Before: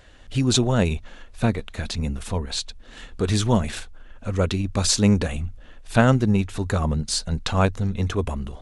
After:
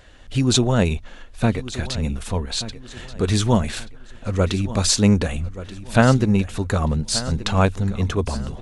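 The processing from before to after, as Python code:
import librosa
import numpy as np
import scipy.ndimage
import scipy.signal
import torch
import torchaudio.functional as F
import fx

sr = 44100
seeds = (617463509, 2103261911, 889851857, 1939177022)

y = fx.echo_feedback(x, sr, ms=1180, feedback_pct=34, wet_db=-15)
y = y * 10.0 ** (2.0 / 20.0)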